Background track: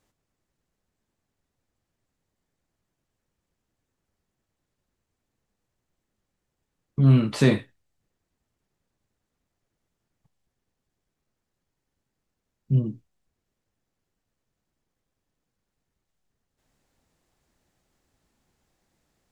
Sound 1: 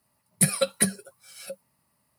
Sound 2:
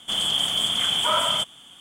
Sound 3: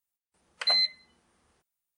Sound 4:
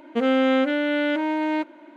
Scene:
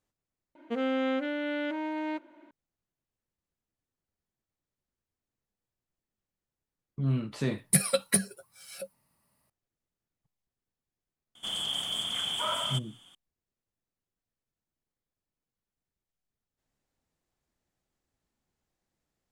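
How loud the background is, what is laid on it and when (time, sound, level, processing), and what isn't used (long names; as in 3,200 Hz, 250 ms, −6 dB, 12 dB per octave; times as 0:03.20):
background track −11.5 dB
0:00.55: mix in 4 −9.5 dB
0:07.32: mix in 1 −2.5 dB
0:11.35: mix in 2 −9.5 dB
not used: 3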